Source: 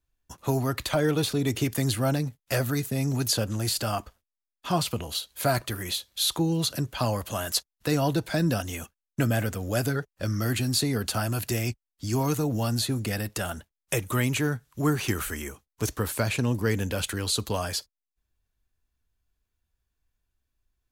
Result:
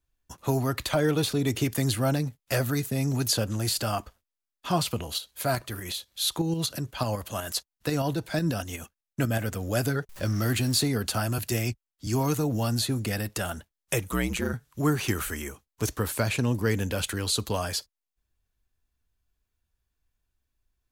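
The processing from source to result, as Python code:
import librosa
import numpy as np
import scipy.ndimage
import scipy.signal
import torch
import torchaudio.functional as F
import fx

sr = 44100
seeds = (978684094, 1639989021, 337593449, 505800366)

y = fx.tremolo_shape(x, sr, shape='saw_up', hz=8.1, depth_pct=50, at=(5.18, 9.52))
y = fx.zero_step(y, sr, step_db=-38.0, at=(10.09, 10.88))
y = fx.band_widen(y, sr, depth_pct=40, at=(11.38, 12.07))
y = fx.ring_mod(y, sr, carrier_hz=61.0, at=(14.09, 14.54))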